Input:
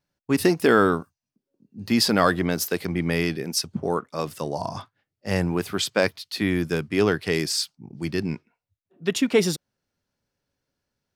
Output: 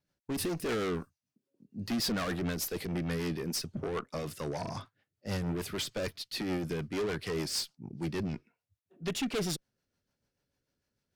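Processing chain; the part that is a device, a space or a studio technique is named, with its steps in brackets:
overdriven rotary cabinet (tube saturation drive 28 dB, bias 0.2; rotating-speaker cabinet horn 6.7 Hz)

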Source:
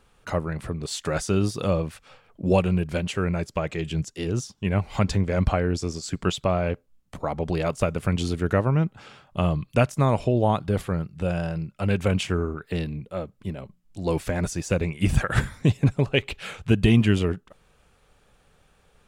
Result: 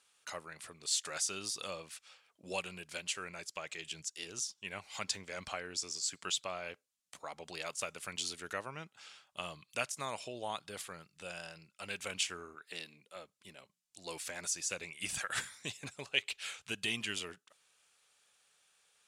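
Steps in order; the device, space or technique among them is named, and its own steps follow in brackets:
piezo pickup straight into a mixer (low-pass filter 8,500 Hz 12 dB per octave; first difference)
0:12.55–0:13.16: high-pass filter 170 Hz 12 dB per octave
level +3 dB

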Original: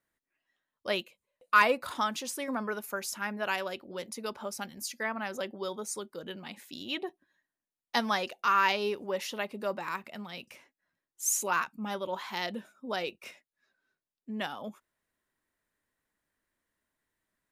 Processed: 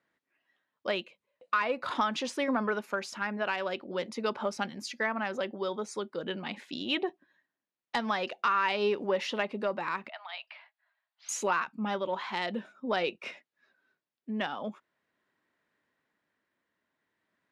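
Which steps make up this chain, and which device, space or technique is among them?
AM radio (band-pass filter 140–3,700 Hz; downward compressor 6 to 1, threshold −30 dBFS, peak gain reduction 13 dB; soft clipping −19 dBFS, distortion −28 dB; amplitude tremolo 0.45 Hz, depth 31%)
0:10.09–0:11.29: Chebyshev band-pass filter 640–4,700 Hz, order 5
level +7 dB

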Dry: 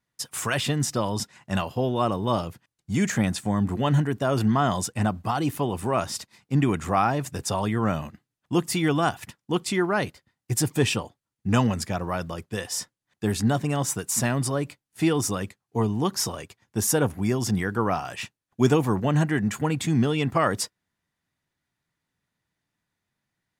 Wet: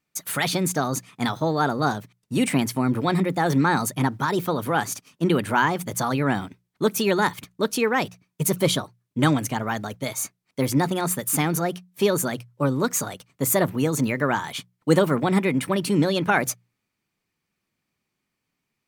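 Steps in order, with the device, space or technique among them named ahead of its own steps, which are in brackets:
nightcore (speed change +25%)
mains-hum notches 60/120/180 Hz
level +2 dB

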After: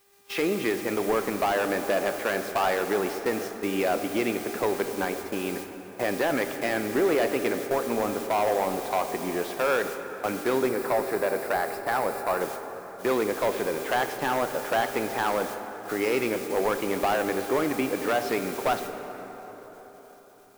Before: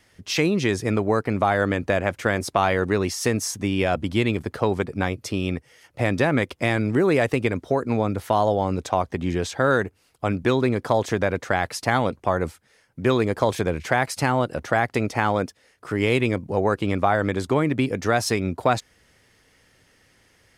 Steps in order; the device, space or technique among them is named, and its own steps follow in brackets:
aircraft radio (band-pass filter 320–2,400 Hz; hard clipping −18.5 dBFS, distortion −10 dB; hum with harmonics 400 Hz, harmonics 6, −45 dBFS −4 dB per octave; white noise bed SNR 14 dB; noise gate −36 dBFS, range −23 dB)
0:10.69–0:12.41: thirty-one-band graphic EQ 250 Hz −7 dB, 3,150 Hz −11 dB, 6,300 Hz −8 dB
dense smooth reverb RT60 4.5 s, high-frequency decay 0.5×, DRR 7 dB
level −1 dB

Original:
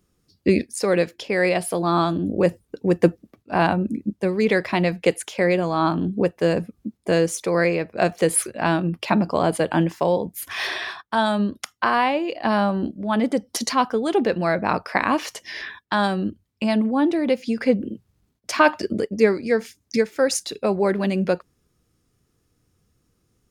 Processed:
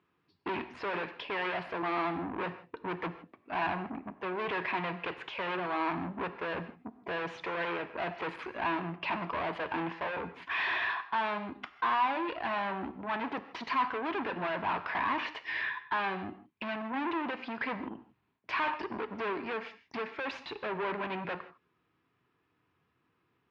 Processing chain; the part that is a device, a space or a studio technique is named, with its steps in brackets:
high-pass filter 150 Hz 6 dB per octave
guitar amplifier (tube saturation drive 31 dB, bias 0.45; bass and treble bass −2 dB, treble −9 dB; loudspeaker in its box 84–3,800 Hz, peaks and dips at 210 Hz −5 dB, 530 Hz −7 dB, 990 Hz +9 dB, 1,700 Hz +4 dB, 2,500 Hz +5 dB)
low-shelf EQ 240 Hz −4 dB
reverb whose tail is shaped and stops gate 180 ms flat, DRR 11.5 dB

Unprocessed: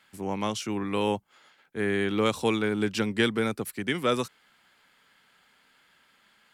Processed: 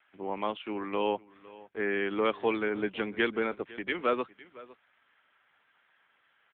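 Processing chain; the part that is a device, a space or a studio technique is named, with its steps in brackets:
satellite phone (band-pass filter 330–3,000 Hz; single-tap delay 507 ms −20 dB; AMR narrowband 6.7 kbit/s 8,000 Hz)

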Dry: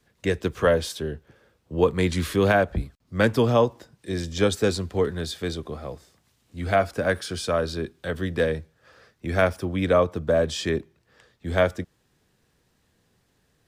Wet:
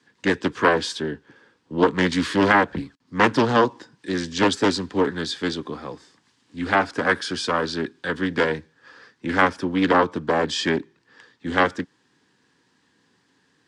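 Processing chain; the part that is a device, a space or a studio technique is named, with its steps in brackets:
full-range speaker at full volume (highs frequency-modulated by the lows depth 0.76 ms; loudspeaker in its box 170–8,400 Hz, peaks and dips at 280 Hz +8 dB, 630 Hz −10 dB, 960 Hz +7 dB, 1,700 Hz +7 dB, 3,200 Hz +3 dB, 4,700 Hz +4 dB)
level +2.5 dB

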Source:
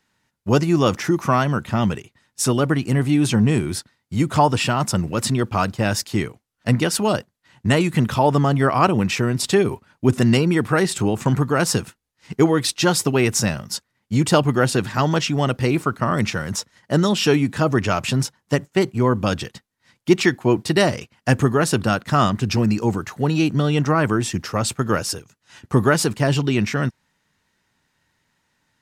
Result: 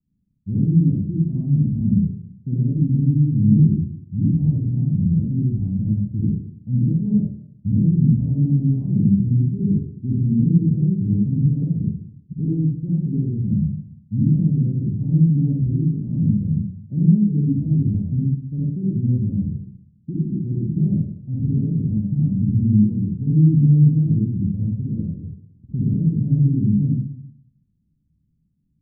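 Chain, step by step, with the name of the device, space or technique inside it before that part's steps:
club heard from the street (brickwall limiter −12.5 dBFS, peak gain reduction 10.5 dB; low-pass filter 210 Hz 24 dB per octave; convolution reverb RT60 0.60 s, pre-delay 49 ms, DRR −5.5 dB)

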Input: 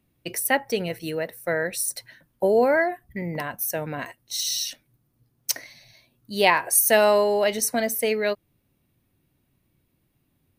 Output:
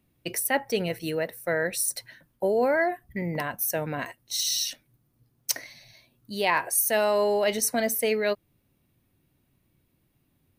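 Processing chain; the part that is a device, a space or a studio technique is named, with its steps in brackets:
compression on the reversed sound (reversed playback; downward compressor 6 to 1, threshold −20 dBFS, peak gain reduction 7.5 dB; reversed playback)

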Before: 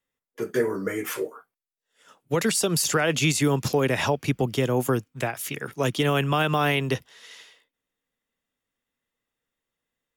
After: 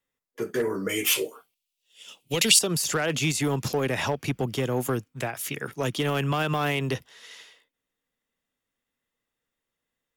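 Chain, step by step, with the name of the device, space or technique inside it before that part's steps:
clipper into limiter (hard clipping −16 dBFS, distortion −20 dB; brickwall limiter −19 dBFS, peak gain reduction 3 dB)
0:00.89–0:02.59: high shelf with overshoot 2,100 Hz +10 dB, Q 3

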